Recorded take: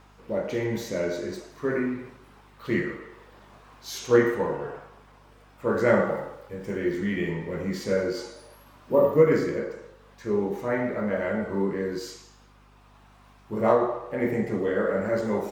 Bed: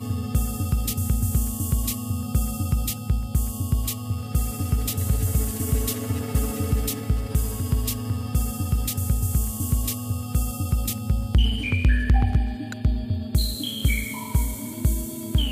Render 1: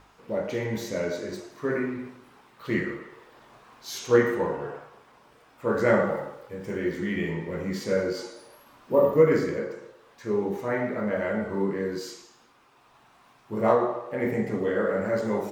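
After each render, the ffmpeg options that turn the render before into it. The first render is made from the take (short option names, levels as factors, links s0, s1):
-af "bandreject=f=50:t=h:w=4,bandreject=f=100:t=h:w=4,bandreject=f=150:t=h:w=4,bandreject=f=200:t=h:w=4,bandreject=f=250:t=h:w=4,bandreject=f=300:t=h:w=4,bandreject=f=350:t=h:w=4,bandreject=f=400:t=h:w=4,bandreject=f=450:t=h:w=4,bandreject=f=500:t=h:w=4,bandreject=f=550:t=h:w=4,bandreject=f=600:t=h:w=4"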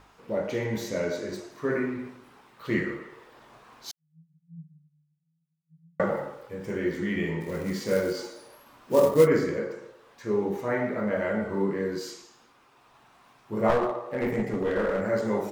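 -filter_complex "[0:a]asettb=1/sr,asplit=3[s0][s1][s2];[s0]atrim=end=3.914[s3];[s1]atrim=start=3.91:end=6,asetpts=PTS-STARTPTS,afade=t=in:d=0.004:c=qsin,afade=t=out:st=2.086:d=0.004:c=qsin,asuperpass=centerf=160:order=20:qfactor=6.8[s4];[s2]atrim=start=5.996[s5];[s3][s4]acrossfade=d=0.004:c1=hsin:c2=qsin[s6];[s6][s5]acrossfade=d=0.004:c1=qsin:c2=hsin,asplit=3[s7][s8][s9];[s7]afade=t=out:st=7.4:d=0.02[s10];[s8]acrusher=bits=5:mode=log:mix=0:aa=0.000001,afade=t=in:st=7.4:d=0.02,afade=t=out:st=9.26:d=0.02[s11];[s9]afade=t=in:st=9.26:d=0.02[s12];[s10][s11][s12]amix=inputs=3:normalize=0,asettb=1/sr,asplit=3[s13][s14][s15];[s13]atrim=end=13.694[s16];[s14]atrim=start=13.69:end=15.03,asetpts=PTS-STARTPTS,afade=t=in:d=0.004:c=qsin,afade=t=out:st=1.336:d=0.004:c=qsin,aeval=exprs='clip(val(0),-1,0.0631)':c=same[s17];[s15]atrim=start=15.026[s18];[s16][s17]acrossfade=d=0.004:c1=hsin:c2=qsin[s19];[s19][s18]acrossfade=d=0.004:c1=qsin:c2=hsin"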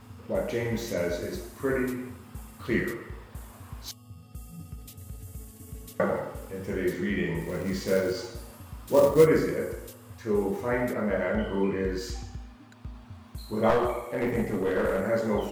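-filter_complex "[1:a]volume=0.106[s0];[0:a][s0]amix=inputs=2:normalize=0"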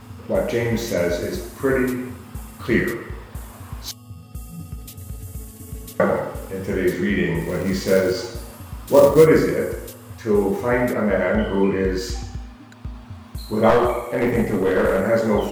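-af "volume=2.51,alimiter=limit=0.794:level=0:latency=1"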